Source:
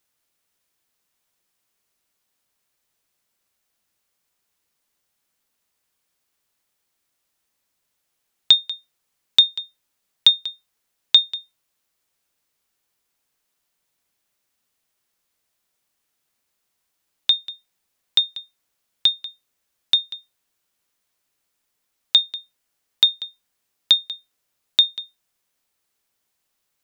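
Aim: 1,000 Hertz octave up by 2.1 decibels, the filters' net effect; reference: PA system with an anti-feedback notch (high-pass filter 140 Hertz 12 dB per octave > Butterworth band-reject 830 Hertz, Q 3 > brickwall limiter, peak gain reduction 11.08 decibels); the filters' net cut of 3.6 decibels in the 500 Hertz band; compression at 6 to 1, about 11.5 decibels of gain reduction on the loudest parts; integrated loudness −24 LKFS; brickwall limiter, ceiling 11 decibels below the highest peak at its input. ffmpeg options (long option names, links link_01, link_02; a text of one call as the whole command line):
ffmpeg -i in.wav -af "equalizer=frequency=500:width_type=o:gain=-6.5,equalizer=frequency=1000:width_type=o:gain=6.5,acompressor=threshold=-22dB:ratio=6,alimiter=limit=-13dB:level=0:latency=1,highpass=140,asuperstop=centerf=830:order=8:qfactor=3,volume=13dB,alimiter=limit=-11.5dB:level=0:latency=1" out.wav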